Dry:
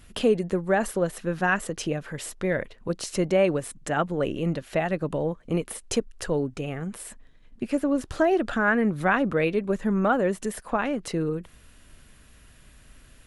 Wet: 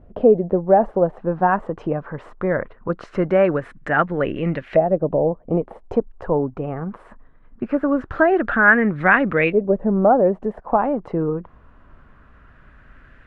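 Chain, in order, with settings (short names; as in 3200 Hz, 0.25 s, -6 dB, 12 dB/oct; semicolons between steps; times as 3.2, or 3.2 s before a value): LFO low-pass saw up 0.21 Hz 610–2200 Hz; gain +4 dB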